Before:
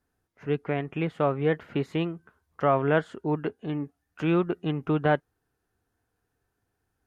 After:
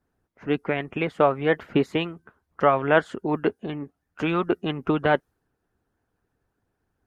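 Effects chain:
harmonic and percussive parts rebalanced harmonic −11 dB
one half of a high-frequency compander decoder only
level +8 dB

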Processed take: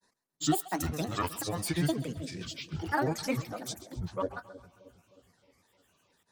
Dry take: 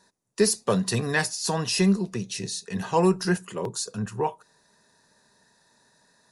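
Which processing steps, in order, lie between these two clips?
granular cloud, pitch spread up and down by 12 semitones
echo with a time of its own for lows and highs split 610 Hz, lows 312 ms, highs 133 ms, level −16 dB
level −6.5 dB

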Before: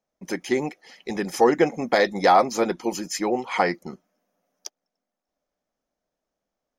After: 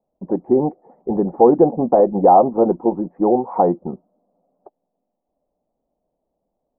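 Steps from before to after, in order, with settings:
Butterworth low-pass 900 Hz 36 dB per octave
in parallel at −1 dB: brickwall limiter −16 dBFS, peak gain reduction 9 dB
on the sum: level +3.5 dB

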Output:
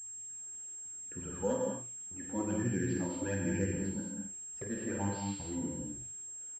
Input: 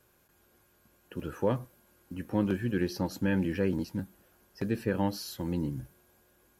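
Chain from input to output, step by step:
all-pass phaser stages 12, 1.2 Hz, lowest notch 110–1,200 Hz
double-tracking delay 50 ms −8.5 dB
reverb whose tail is shaped and stops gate 260 ms flat, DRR −0.5 dB
switching amplifier with a slow clock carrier 7,500 Hz
level −5.5 dB

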